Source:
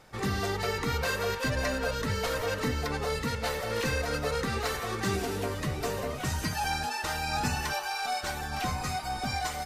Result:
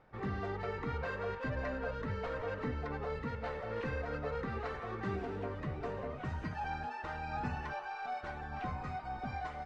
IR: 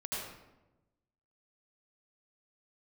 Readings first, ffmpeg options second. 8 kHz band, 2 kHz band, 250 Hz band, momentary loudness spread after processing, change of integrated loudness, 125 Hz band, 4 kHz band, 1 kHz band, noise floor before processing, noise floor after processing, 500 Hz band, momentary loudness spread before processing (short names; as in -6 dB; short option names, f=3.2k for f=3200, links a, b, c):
under -30 dB, -10.0 dB, -7.0 dB, 3 LU, -8.5 dB, -7.0 dB, -20.5 dB, -7.5 dB, -36 dBFS, -45 dBFS, -7.0 dB, 3 LU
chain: -af "lowpass=1.8k,volume=-7dB"